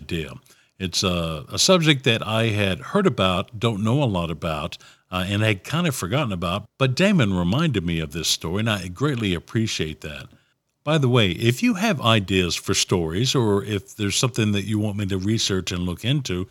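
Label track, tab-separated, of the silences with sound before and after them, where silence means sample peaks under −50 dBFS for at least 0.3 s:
10.390000	10.860000	silence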